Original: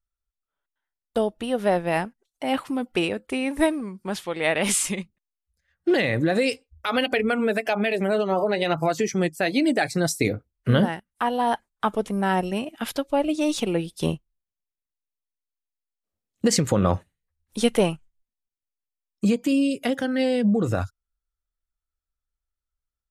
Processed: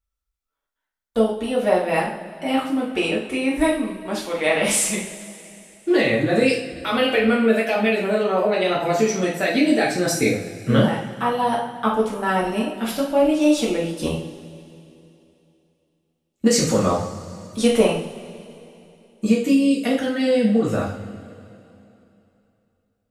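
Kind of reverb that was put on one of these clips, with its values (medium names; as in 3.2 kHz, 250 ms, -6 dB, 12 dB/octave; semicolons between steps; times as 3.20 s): two-slope reverb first 0.49 s, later 3 s, from -18 dB, DRR -5 dB; trim -2.5 dB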